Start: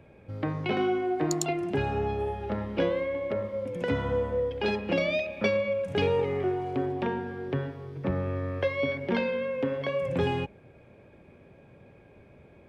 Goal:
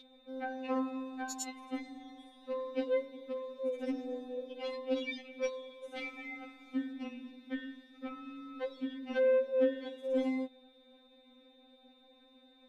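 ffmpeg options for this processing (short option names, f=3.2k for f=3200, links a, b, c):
-af "aeval=exprs='val(0)+0.0224*sin(2*PI*3700*n/s)':c=same,afftfilt=real='re*3.46*eq(mod(b,12),0)':imag='im*3.46*eq(mod(b,12),0)':win_size=2048:overlap=0.75,volume=-4.5dB"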